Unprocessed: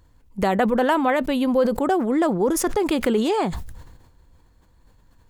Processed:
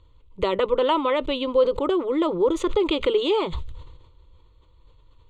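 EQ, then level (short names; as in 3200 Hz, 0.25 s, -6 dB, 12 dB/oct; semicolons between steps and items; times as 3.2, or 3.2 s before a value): air absorption 230 m; band shelf 5300 Hz +12.5 dB; fixed phaser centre 1100 Hz, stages 8; +2.5 dB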